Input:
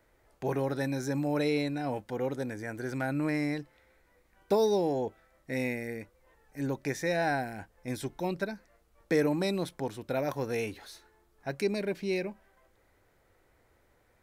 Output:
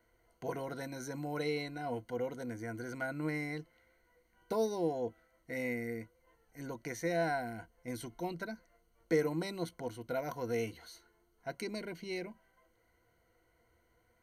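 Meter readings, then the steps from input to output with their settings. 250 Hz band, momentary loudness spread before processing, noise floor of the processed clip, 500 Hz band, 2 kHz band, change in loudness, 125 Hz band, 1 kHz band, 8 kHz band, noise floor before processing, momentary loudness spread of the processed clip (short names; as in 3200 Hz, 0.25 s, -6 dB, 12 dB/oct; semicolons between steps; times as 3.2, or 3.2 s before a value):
-7.5 dB, 12 LU, -73 dBFS, -6.0 dB, -5.0 dB, -6.0 dB, -7.0 dB, -5.0 dB, -4.0 dB, -68 dBFS, 12 LU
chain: ripple EQ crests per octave 1.9, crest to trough 13 dB; gain -7 dB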